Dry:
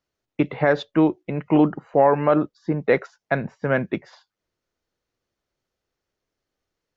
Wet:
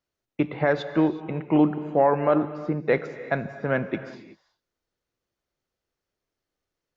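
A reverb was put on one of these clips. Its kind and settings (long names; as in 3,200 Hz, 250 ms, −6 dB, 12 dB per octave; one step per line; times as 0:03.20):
reverb whose tail is shaped and stops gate 400 ms flat, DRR 11 dB
level −3.5 dB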